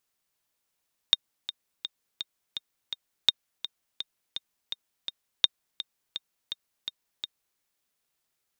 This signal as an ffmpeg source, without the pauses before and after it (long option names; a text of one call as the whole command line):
ffmpeg -f lavfi -i "aevalsrc='pow(10,(-5-14*gte(mod(t,6*60/167),60/167))/20)*sin(2*PI*3680*mod(t,60/167))*exp(-6.91*mod(t,60/167)/0.03)':duration=6.46:sample_rate=44100" out.wav